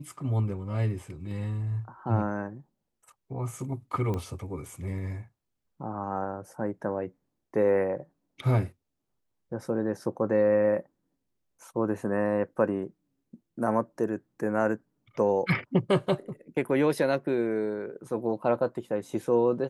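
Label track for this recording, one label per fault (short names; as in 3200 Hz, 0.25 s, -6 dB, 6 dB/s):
4.140000	4.140000	pop -21 dBFS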